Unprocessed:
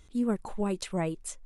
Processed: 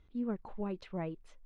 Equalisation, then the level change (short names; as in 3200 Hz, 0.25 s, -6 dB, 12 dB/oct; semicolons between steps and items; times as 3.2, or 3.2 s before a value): air absorption 280 m; -7.0 dB